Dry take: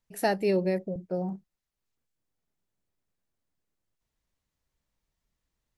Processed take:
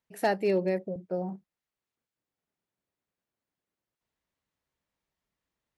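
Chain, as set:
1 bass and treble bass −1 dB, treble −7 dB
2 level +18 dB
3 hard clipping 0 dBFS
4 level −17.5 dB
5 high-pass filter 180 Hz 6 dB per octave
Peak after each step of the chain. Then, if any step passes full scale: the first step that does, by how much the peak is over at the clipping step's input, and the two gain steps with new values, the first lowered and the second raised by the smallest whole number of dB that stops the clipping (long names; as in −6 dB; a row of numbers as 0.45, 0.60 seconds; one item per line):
−14.5, +3.5, 0.0, −17.5, −15.5 dBFS
step 2, 3.5 dB
step 2 +14 dB, step 4 −13.5 dB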